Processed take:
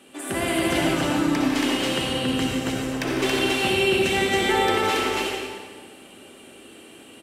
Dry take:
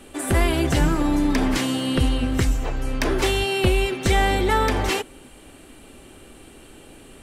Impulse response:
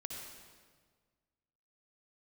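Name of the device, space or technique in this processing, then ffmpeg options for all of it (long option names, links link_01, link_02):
stadium PA: -filter_complex "[0:a]highpass=190,equalizer=frequency=2900:width_type=o:width=0.64:gain=4,aecho=1:1:151.6|277:0.282|0.891[link_01];[1:a]atrim=start_sample=2205[link_02];[link_01][link_02]afir=irnorm=-1:irlink=0,volume=-1dB"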